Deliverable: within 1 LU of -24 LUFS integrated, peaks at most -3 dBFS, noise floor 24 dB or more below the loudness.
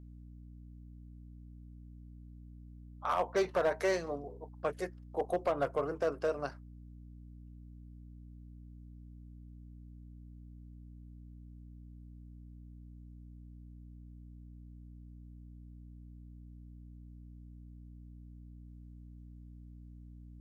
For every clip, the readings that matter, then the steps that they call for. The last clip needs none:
clipped samples 0.3%; clipping level -23.5 dBFS; hum 60 Hz; highest harmonic 300 Hz; hum level -48 dBFS; loudness -34.5 LUFS; peak level -23.5 dBFS; loudness target -24.0 LUFS
-> clip repair -23.5 dBFS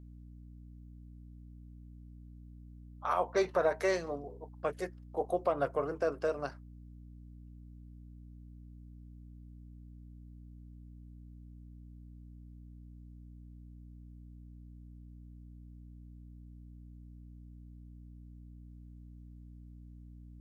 clipped samples 0.0%; hum 60 Hz; highest harmonic 300 Hz; hum level -48 dBFS
-> de-hum 60 Hz, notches 5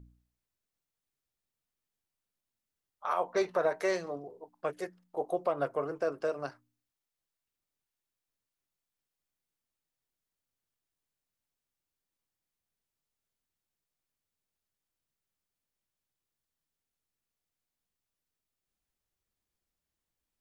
hum not found; loudness -34.0 LUFS; peak level -17.5 dBFS; loudness target -24.0 LUFS
-> trim +10 dB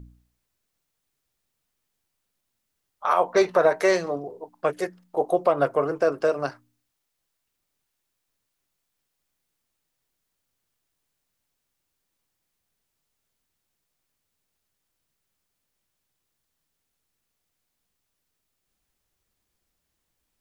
loudness -24.0 LUFS; peak level -7.5 dBFS; noise floor -79 dBFS

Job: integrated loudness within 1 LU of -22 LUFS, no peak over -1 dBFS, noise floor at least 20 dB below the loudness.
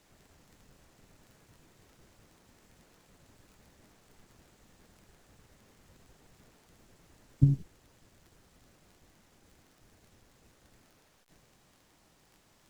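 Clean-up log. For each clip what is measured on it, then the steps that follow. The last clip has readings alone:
tick rate 19 per s; loudness -28.5 LUFS; peak level -9.0 dBFS; loudness target -22.0 LUFS
-> de-click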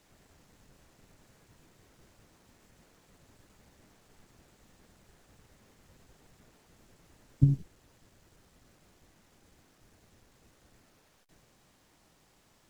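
tick rate 0.47 per s; loudness -28.5 LUFS; peak level -9.0 dBFS; loudness target -22.0 LUFS
-> trim +6.5 dB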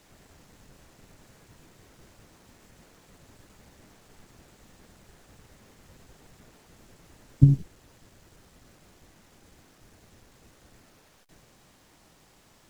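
loudness -22.0 LUFS; peak level -2.5 dBFS; noise floor -60 dBFS

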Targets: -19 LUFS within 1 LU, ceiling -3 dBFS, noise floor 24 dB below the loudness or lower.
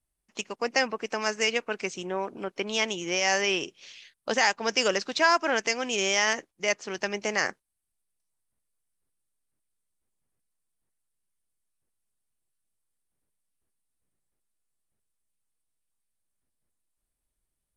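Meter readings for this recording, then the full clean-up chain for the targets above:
loudness -26.5 LUFS; peak level -9.0 dBFS; loudness target -19.0 LUFS
-> trim +7.5 dB; peak limiter -3 dBFS

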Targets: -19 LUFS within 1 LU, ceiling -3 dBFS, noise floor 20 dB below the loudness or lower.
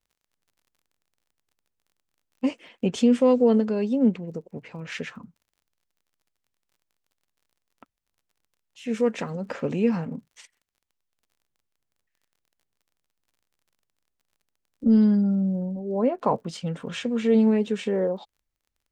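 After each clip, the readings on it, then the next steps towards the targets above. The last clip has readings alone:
tick rate 36 per s; loudness -24.0 LUFS; peak level -9.0 dBFS; loudness target -19.0 LUFS
-> de-click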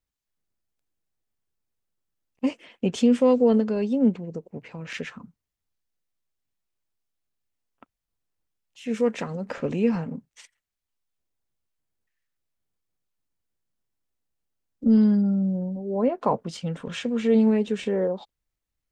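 tick rate 0 per s; loudness -24.0 LUFS; peak level -9.0 dBFS; loudness target -19.0 LUFS
-> trim +5 dB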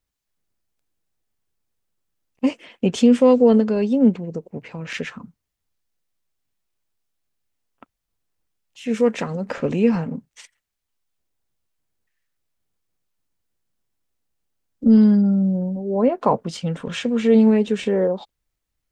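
loudness -19.0 LUFS; peak level -4.0 dBFS; noise floor -80 dBFS

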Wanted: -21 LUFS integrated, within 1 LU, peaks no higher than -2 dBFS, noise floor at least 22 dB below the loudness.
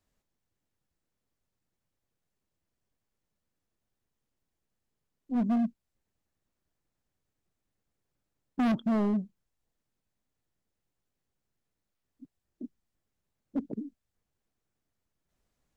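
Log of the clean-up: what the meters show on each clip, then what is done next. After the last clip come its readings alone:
clipped samples 1.3%; clipping level -24.0 dBFS; loudness -31.0 LUFS; peak level -24.0 dBFS; loudness target -21.0 LUFS
-> clip repair -24 dBFS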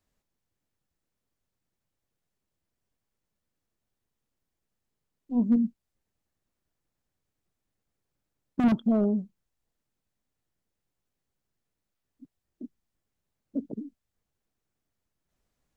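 clipped samples 0.0%; loudness -27.5 LUFS; peak level -15.0 dBFS; loudness target -21.0 LUFS
-> trim +6.5 dB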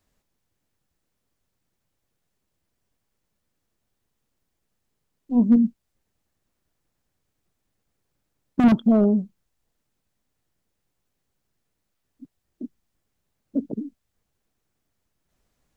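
loudness -21.0 LUFS; peak level -8.5 dBFS; noise floor -78 dBFS

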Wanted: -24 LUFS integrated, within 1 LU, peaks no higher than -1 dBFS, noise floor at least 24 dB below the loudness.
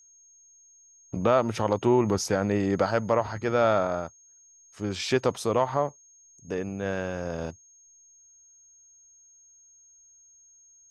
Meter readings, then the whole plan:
steady tone 6.5 kHz; tone level -54 dBFS; loudness -26.5 LUFS; peak level -9.5 dBFS; loudness target -24.0 LUFS
-> band-stop 6.5 kHz, Q 30; trim +2.5 dB

